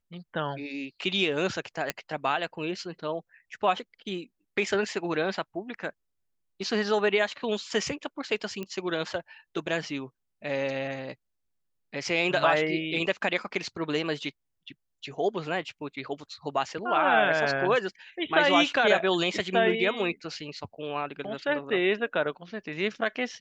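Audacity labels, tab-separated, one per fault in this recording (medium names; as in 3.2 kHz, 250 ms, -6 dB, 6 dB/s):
1.900000	1.900000	pop -11 dBFS
8.630000	8.630000	pop -22 dBFS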